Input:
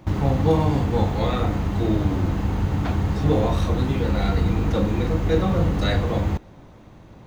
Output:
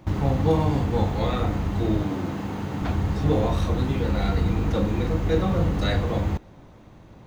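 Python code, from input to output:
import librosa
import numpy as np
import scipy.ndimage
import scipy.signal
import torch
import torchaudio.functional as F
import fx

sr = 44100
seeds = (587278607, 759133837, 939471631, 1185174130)

y = fx.highpass(x, sr, hz=150.0, slope=12, at=(2.03, 2.82))
y = y * 10.0 ** (-2.0 / 20.0)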